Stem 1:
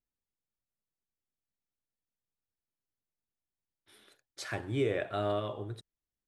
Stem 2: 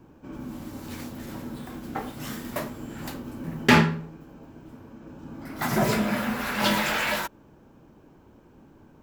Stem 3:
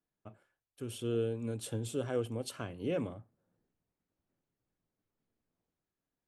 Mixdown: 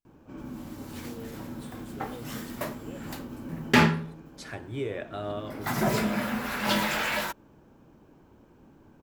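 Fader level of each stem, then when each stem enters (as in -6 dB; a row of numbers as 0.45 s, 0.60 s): -2.5 dB, -2.5 dB, -12.0 dB; 0.00 s, 0.05 s, 0.00 s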